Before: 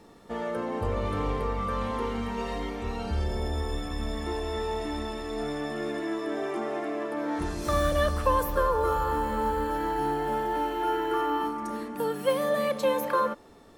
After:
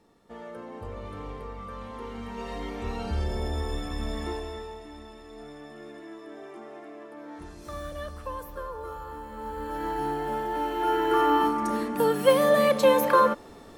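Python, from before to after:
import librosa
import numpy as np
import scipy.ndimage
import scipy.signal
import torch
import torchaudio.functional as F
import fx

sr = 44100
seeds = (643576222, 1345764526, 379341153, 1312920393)

y = fx.gain(x, sr, db=fx.line((1.89, -9.5), (2.84, 0.0), (4.26, 0.0), (4.82, -12.0), (9.3, -12.0), (9.87, -1.5), (10.51, -1.5), (11.28, 6.0)))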